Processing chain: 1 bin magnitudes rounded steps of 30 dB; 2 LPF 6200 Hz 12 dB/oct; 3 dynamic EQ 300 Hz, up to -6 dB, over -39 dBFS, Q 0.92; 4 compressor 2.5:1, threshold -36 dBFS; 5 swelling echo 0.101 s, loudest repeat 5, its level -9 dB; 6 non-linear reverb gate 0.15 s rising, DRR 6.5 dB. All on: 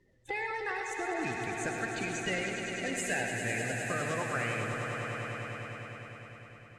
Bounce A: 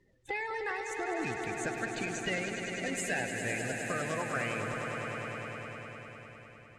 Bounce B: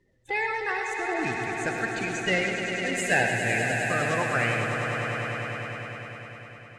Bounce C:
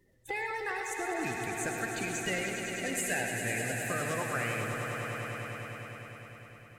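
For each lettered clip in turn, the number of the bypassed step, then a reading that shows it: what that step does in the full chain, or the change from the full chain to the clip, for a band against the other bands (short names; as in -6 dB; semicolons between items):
6, 125 Hz band -2.0 dB; 4, mean gain reduction 5.0 dB; 2, 8 kHz band +3.5 dB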